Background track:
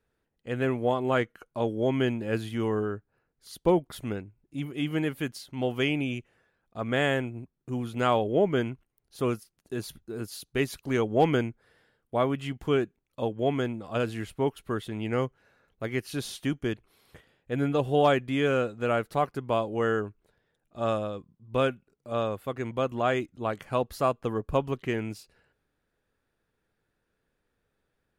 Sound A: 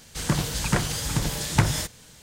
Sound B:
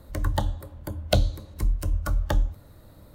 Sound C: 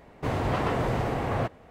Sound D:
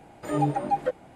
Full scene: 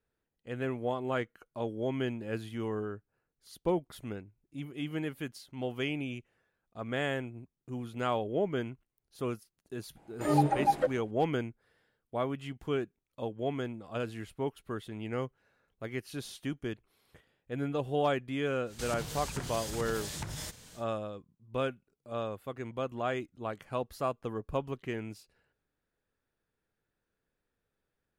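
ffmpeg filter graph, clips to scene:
ffmpeg -i bed.wav -i cue0.wav -i cue1.wav -i cue2.wav -i cue3.wav -filter_complex "[0:a]volume=-7dB[link_01];[4:a]agate=range=-10dB:threshold=-39dB:ratio=16:release=271:detection=peak[link_02];[1:a]acompressor=threshold=-32dB:ratio=6:attack=3.2:release=140:knee=1:detection=peak[link_03];[link_02]atrim=end=1.15,asetpts=PTS-STARTPTS,volume=-1dB,afade=type=in:duration=0.004:curve=hsin,afade=type=out:start_time=1.146:duration=0.004:curve=hsin,adelay=9960[link_04];[link_03]atrim=end=2.22,asetpts=PTS-STARTPTS,volume=-4dB,afade=type=in:duration=0.1,afade=type=out:start_time=2.12:duration=0.1,adelay=18640[link_05];[link_01][link_04][link_05]amix=inputs=3:normalize=0" out.wav

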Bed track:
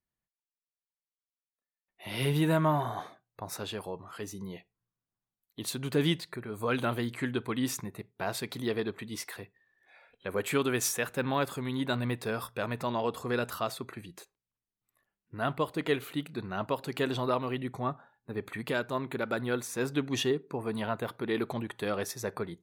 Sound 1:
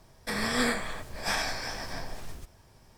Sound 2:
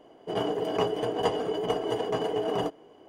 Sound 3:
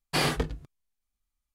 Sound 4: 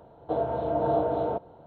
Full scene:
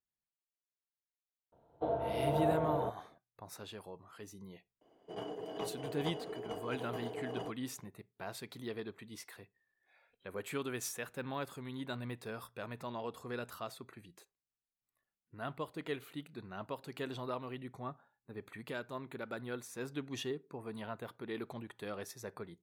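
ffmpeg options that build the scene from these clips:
ffmpeg -i bed.wav -i cue0.wav -i cue1.wav -i cue2.wav -i cue3.wav -filter_complex "[0:a]volume=-10.5dB[link_01];[4:a]agate=range=-8dB:threshold=-39dB:ratio=16:release=100:detection=peak,atrim=end=1.66,asetpts=PTS-STARTPTS,volume=-7dB,afade=type=in:duration=0.004:curve=hsin,afade=type=out:start_time=1.656:duration=0.004:curve=hsin,adelay=1520[link_02];[2:a]atrim=end=3.08,asetpts=PTS-STARTPTS,volume=-14dB,afade=type=in:duration=0.004:curve=hsin,afade=type=out:start_time=3.076:duration=0.004:curve=hsin,adelay=212121S[link_03];[link_01][link_02][link_03]amix=inputs=3:normalize=0" out.wav

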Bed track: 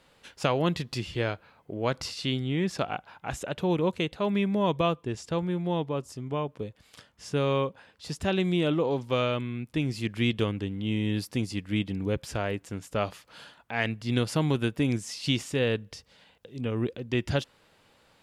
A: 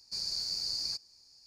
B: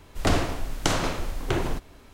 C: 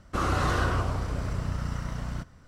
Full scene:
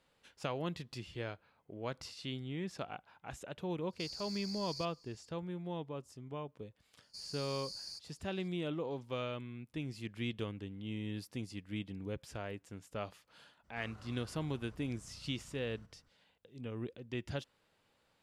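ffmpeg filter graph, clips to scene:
ffmpeg -i bed.wav -i cue0.wav -i cue1.wav -i cue2.wav -filter_complex "[1:a]asplit=2[link_01][link_02];[0:a]volume=-12.5dB[link_03];[link_01]acompressor=threshold=-37dB:ratio=6:attack=3.2:release=140:knee=1:detection=peak[link_04];[link_02]equalizer=frequency=10000:width_type=o:width=0.5:gain=10.5[link_05];[3:a]acompressor=threshold=-38dB:ratio=3:attack=0.39:release=127:knee=1:detection=peak[link_06];[link_04]atrim=end=1.46,asetpts=PTS-STARTPTS,volume=-5dB,afade=type=in:duration=0.1,afade=type=out:start_time=1.36:duration=0.1,adelay=3880[link_07];[link_05]atrim=end=1.46,asetpts=PTS-STARTPTS,volume=-12.5dB,afade=type=in:duration=0.004:curve=hsin,afade=type=out:start_time=1.456:duration=0.004:curve=hsin,adelay=7020[link_08];[link_06]atrim=end=2.47,asetpts=PTS-STARTPTS,volume=-17dB,afade=type=in:duration=0.02,afade=type=out:start_time=2.45:duration=0.02,adelay=13630[link_09];[link_03][link_07][link_08][link_09]amix=inputs=4:normalize=0" out.wav

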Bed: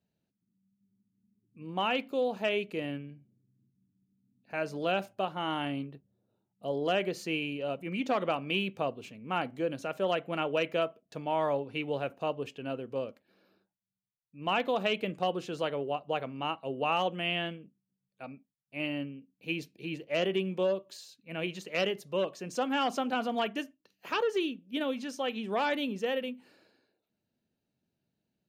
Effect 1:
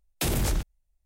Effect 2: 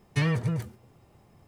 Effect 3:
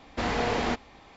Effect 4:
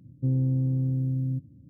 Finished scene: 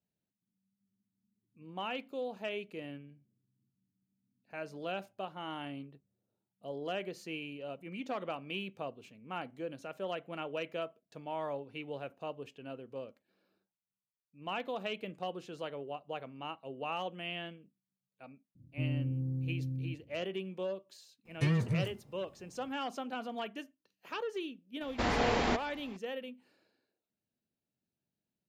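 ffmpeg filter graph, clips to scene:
ffmpeg -i bed.wav -i cue0.wav -i cue1.wav -i cue2.wav -i cue3.wav -filter_complex "[0:a]volume=-8.5dB[link_01];[2:a]equalizer=frequency=220:width_type=o:width=1.3:gain=8[link_02];[4:a]atrim=end=1.69,asetpts=PTS-STARTPTS,volume=-9.5dB,afade=type=in:duration=0.004:curve=hsin,afade=type=out:start_time=1.686:duration=0.004:curve=hsin,adelay=18550[link_03];[link_02]atrim=end=1.47,asetpts=PTS-STARTPTS,volume=-8.5dB,afade=type=in:duration=0.004:curve=hsin,afade=type=out:start_time=1.466:duration=0.004:curve=hsin,adelay=21250[link_04];[3:a]atrim=end=1.16,asetpts=PTS-STARTPTS,volume=-2.5dB,afade=type=in:duration=0.004:curve=hsin,afade=type=out:start_time=1.156:duration=0.004:curve=hsin,adelay=24810[link_05];[link_01][link_03][link_04][link_05]amix=inputs=4:normalize=0" out.wav

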